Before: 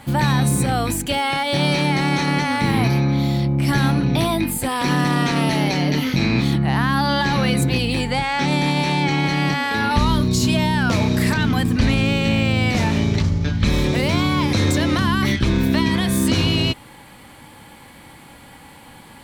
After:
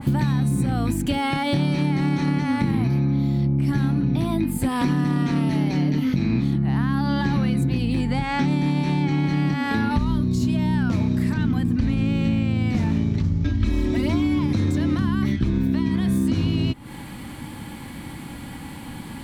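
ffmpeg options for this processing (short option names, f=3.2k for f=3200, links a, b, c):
-filter_complex "[0:a]asettb=1/sr,asplit=3[a][b][c];[a]atrim=end=13.444[d];[b]atrim=start=13.44:end=14.39,asetpts=PTS-STARTPTS,afade=t=in:d=0.004:c=qsin,afade=t=out:st=0.946:d=0.004:c=qsin,aecho=1:1:3.1:0.97,atrim=end_sample=41895[e];[c]atrim=start=14.386[f];[d][e]acrossfade=d=0.004:c1=hsin:c2=qsin[g];[g][f]acrossfade=d=0.004:c1=qsin:c2=hsin,lowshelf=f=370:t=q:w=1.5:g=7,acompressor=threshold=-22dB:ratio=6,adynamicequalizer=threshold=0.00631:dfrequency=2100:dqfactor=0.7:tfrequency=2100:tqfactor=0.7:attack=5:release=100:ratio=0.375:range=2.5:mode=cutabove:tftype=highshelf,volume=3dB"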